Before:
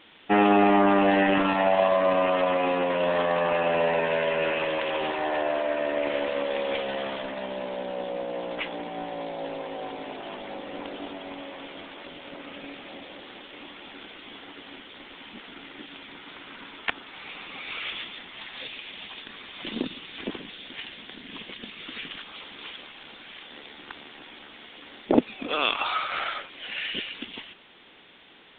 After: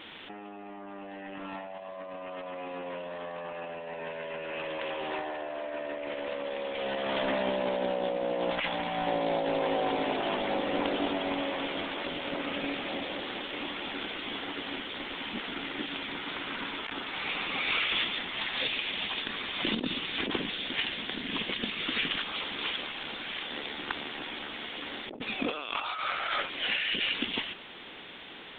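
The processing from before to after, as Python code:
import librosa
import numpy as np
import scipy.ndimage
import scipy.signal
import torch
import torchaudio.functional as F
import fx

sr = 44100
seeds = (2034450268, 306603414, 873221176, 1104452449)

y = fx.peak_eq(x, sr, hz=380.0, db=-13.5, octaves=1.1, at=(8.5, 9.07))
y = fx.over_compress(y, sr, threshold_db=-35.0, ratio=-1.0)
y = y * 10.0 ** (1.0 / 20.0)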